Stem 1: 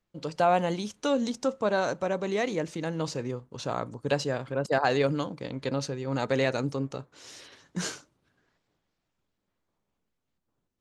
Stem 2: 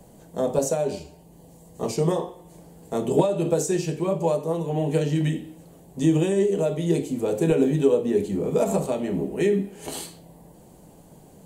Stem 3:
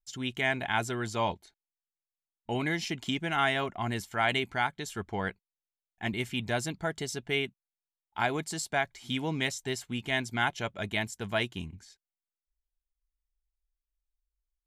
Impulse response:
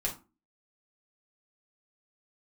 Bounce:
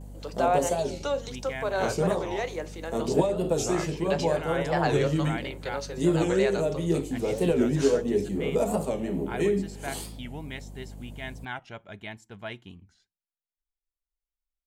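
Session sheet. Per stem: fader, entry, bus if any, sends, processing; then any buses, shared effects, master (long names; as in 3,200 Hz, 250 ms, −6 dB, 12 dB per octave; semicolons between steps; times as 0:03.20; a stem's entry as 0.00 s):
−4.5 dB, 0.00 s, send −11.5 dB, Butterworth high-pass 340 Hz; pitch vibrato 6.6 Hz 7.5 cents
−3.5 dB, 0.00 s, no send, noise gate with hold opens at −46 dBFS; mains hum 50 Hz, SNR 14 dB
−8.0 dB, 1.10 s, send −22 dB, high-shelf EQ 5,100 Hz −11 dB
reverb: on, RT60 0.30 s, pre-delay 4 ms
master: wow of a warped record 45 rpm, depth 160 cents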